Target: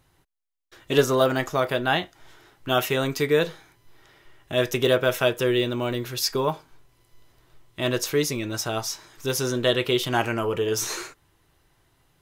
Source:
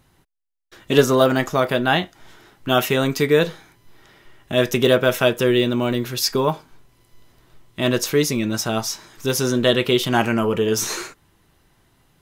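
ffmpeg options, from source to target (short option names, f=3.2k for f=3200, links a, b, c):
-af "equalizer=f=210:t=o:w=0.41:g=-10.5,volume=-4dB"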